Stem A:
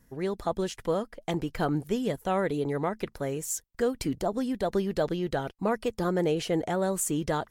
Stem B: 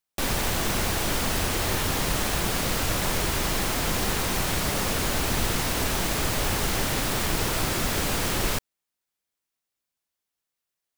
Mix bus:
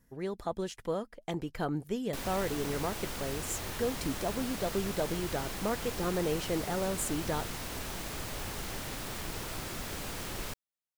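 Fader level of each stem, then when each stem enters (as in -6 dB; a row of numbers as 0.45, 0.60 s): -5.5, -13.0 dB; 0.00, 1.95 s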